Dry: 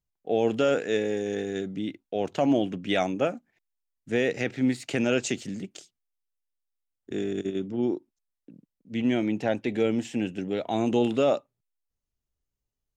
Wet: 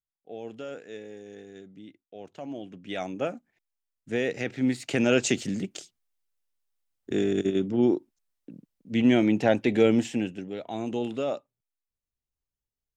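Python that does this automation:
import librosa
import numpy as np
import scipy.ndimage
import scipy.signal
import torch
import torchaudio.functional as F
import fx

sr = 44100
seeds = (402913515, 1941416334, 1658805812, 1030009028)

y = fx.gain(x, sr, db=fx.line((2.52, -15.0), (3.33, -2.5), (4.43, -2.5), (5.38, 4.5), (10.01, 4.5), (10.49, -6.5)))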